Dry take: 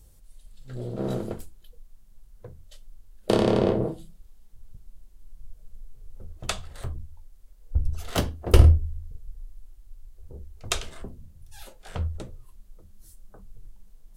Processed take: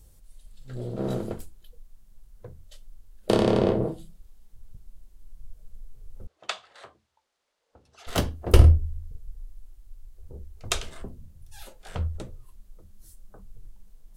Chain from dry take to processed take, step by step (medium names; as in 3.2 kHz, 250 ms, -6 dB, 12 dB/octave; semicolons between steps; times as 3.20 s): 6.27–8.07 s: band-pass 620–4800 Hz